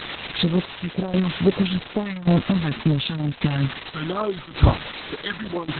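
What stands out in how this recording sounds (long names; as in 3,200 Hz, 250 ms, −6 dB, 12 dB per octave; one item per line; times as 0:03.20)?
phaser sweep stages 2, 2.2 Hz, lowest notch 400–3,100 Hz
a quantiser's noise floor 6 bits, dither triangular
tremolo saw down 0.88 Hz, depth 75%
Opus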